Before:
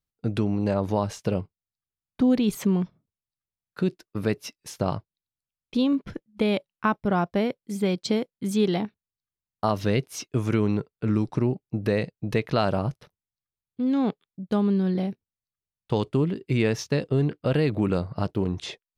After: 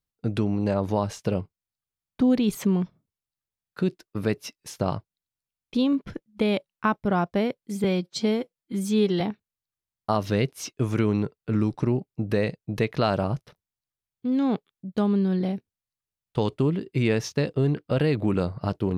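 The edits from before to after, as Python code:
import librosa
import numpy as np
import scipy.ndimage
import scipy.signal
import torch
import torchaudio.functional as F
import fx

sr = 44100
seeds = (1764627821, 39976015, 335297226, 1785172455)

y = fx.edit(x, sr, fx.stretch_span(start_s=7.84, length_s=0.91, factor=1.5), tone=tone)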